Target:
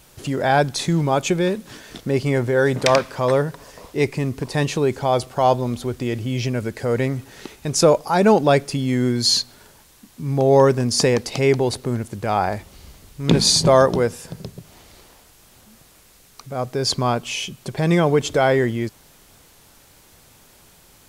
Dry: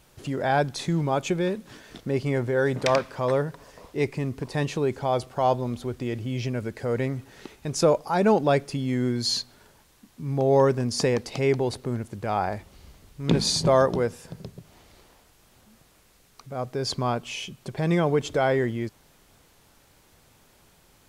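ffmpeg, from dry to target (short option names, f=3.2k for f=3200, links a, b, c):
-af "highshelf=f=4.2k:g=5.5,volume=5.5dB"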